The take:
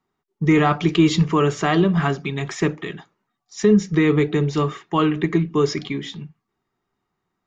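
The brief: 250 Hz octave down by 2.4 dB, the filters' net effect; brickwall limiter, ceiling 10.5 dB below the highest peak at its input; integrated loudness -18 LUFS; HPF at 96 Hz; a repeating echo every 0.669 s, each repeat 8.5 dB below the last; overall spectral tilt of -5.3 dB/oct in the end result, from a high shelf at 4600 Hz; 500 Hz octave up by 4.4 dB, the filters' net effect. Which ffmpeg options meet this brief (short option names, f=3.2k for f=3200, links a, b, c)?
-af "highpass=96,equalizer=f=250:t=o:g=-7,equalizer=f=500:t=o:g=8,highshelf=f=4.6k:g=5,alimiter=limit=-13dB:level=0:latency=1,aecho=1:1:669|1338|2007|2676:0.376|0.143|0.0543|0.0206,volume=5.5dB"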